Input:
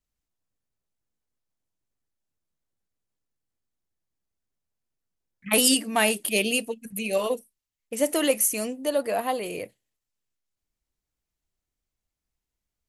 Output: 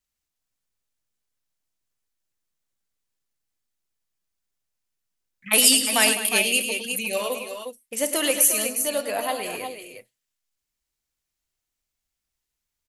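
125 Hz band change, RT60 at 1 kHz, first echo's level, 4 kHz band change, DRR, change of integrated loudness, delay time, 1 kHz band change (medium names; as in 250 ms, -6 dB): no reading, no reverb, -17.5 dB, +5.5 dB, no reverb, +4.0 dB, 49 ms, +0.5 dB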